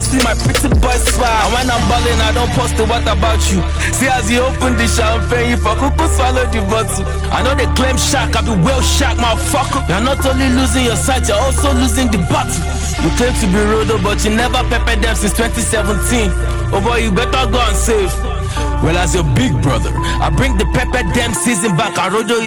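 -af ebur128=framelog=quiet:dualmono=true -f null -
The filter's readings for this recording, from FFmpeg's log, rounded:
Integrated loudness:
  I:         -10.8 LUFS
  Threshold: -20.8 LUFS
Loudness range:
  LRA:         1.3 LU
  Threshold: -30.9 LUFS
  LRA low:   -11.6 LUFS
  LRA high:  -10.3 LUFS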